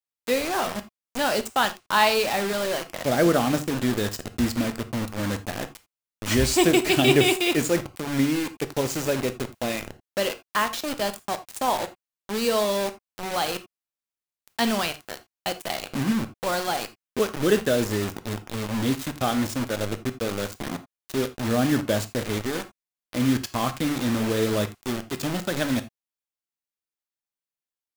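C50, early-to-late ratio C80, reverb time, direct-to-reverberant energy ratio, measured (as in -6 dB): 15.0 dB, 21.0 dB, no single decay rate, 9.5 dB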